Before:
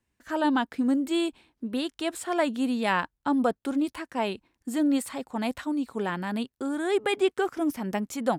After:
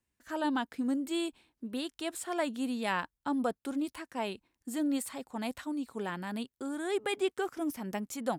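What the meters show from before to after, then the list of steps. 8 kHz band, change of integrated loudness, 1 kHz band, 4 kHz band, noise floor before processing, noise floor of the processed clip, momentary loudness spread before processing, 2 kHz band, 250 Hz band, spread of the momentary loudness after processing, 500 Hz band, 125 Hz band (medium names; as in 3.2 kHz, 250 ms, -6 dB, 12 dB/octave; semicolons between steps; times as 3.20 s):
-2.5 dB, -7.0 dB, -7.0 dB, -5.0 dB, -81 dBFS, under -85 dBFS, 7 LU, -6.5 dB, -7.0 dB, 7 LU, -7.0 dB, -7.0 dB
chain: treble shelf 5.4 kHz +6.5 dB; trim -7 dB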